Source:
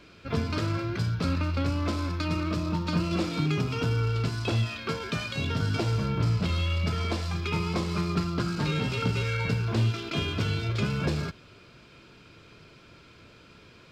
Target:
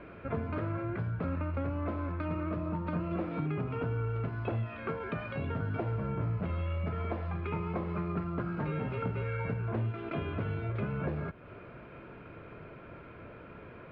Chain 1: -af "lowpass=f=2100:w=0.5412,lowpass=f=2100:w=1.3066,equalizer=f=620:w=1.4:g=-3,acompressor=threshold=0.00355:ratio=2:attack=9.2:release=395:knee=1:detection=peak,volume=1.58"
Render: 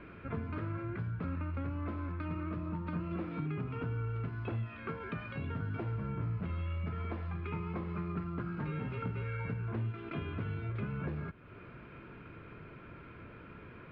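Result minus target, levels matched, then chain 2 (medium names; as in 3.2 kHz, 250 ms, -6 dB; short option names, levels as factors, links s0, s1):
500 Hz band -3.5 dB; compression: peak gain reduction +2.5 dB
-af "lowpass=f=2100:w=0.5412,lowpass=f=2100:w=1.3066,equalizer=f=620:w=1.4:g=5.5,acompressor=threshold=0.00708:ratio=2:attack=9.2:release=395:knee=1:detection=peak,volume=1.58"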